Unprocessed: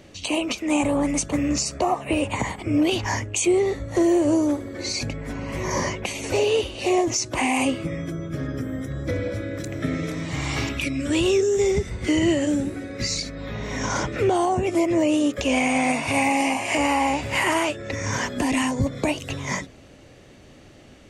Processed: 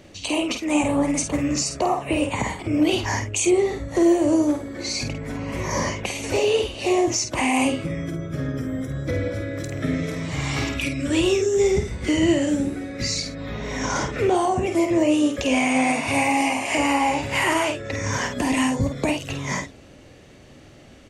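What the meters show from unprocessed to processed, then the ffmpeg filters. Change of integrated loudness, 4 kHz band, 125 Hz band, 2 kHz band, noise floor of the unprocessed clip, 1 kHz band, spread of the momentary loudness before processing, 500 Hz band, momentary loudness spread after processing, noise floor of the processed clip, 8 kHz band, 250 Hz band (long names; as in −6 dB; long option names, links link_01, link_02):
+1.0 dB, +1.0 dB, +1.0 dB, +1.0 dB, −48 dBFS, +0.5 dB, 9 LU, +0.5 dB, 9 LU, −47 dBFS, +1.0 dB, +1.0 dB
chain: -filter_complex "[0:a]asplit=2[link_01][link_02];[link_02]adelay=50,volume=-6.5dB[link_03];[link_01][link_03]amix=inputs=2:normalize=0"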